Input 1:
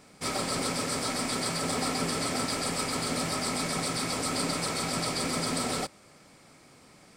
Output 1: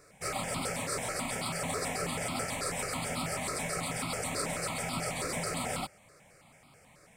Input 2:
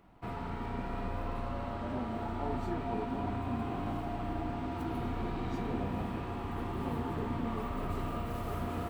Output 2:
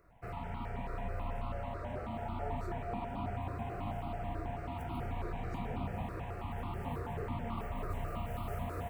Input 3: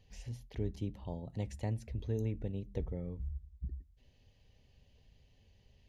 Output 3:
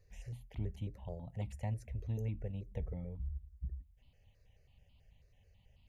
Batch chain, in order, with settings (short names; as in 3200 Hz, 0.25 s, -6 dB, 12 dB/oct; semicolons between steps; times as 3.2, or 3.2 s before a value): step phaser 9.2 Hz 850–1700 Hz